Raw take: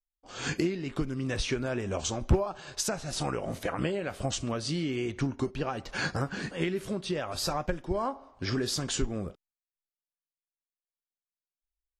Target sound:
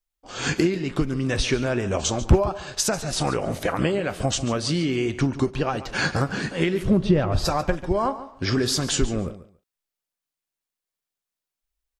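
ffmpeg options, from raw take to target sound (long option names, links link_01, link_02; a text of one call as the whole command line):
ffmpeg -i in.wav -filter_complex "[0:a]asplit=3[link_01][link_02][link_03];[link_01]afade=type=out:start_time=6.82:duration=0.02[link_04];[link_02]aemphasis=mode=reproduction:type=riaa,afade=type=in:start_time=6.82:duration=0.02,afade=type=out:start_time=7.44:duration=0.02[link_05];[link_03]afade=type=in:start_time=7.44:duration=0.02[link_06];[link_04][link_05][link_06]amix=inputs=3:normalize=0,aecho=1:1:142|284:0.178|0.032,volume=7.5dB" out.wav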